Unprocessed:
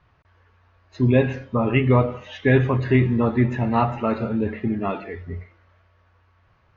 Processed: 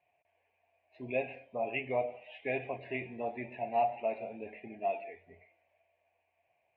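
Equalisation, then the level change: double band-pass 1300 Hz, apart 1.8 oct; air absorption 240 m; 0.0 dB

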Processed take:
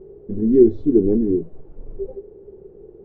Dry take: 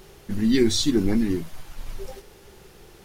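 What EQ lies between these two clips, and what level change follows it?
synth low-pass 420 Hz, resonance Q 4.9; -1.0 dB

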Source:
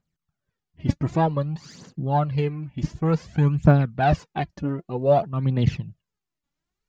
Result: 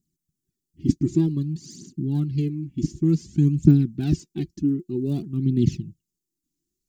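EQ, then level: EQ curve 110 Hz 0 dB, 360 Hz +12 dB, 530 Hz -27 dB, 1300 Hz -20 dB, 7500 Hz +12 dB; -3.0 dB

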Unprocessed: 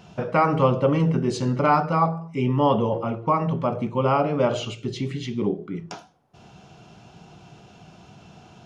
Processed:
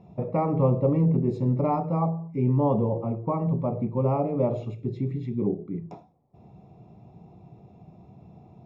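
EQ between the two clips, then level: running mean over 29 samples; bell 110 Hz +4 dB 1.3 oct; notches 50/100/150 Hz; -2.0 dB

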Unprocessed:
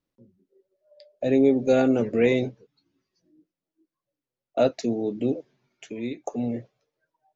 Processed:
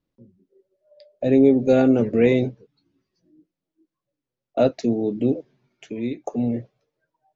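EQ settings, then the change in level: LPF 6300 Hz 12 dB/oct; low shelf 420 Hz +6.5 dB; 0.0 dB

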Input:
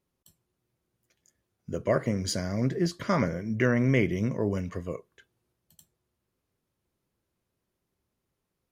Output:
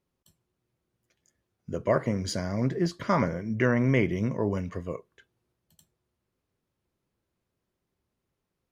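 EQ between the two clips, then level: dynamic EQ 930 Hz, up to +6 dB, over -46 dBFS, Q 2.4; high shelf 7200 Hz -7.5 dB; 0.0 dB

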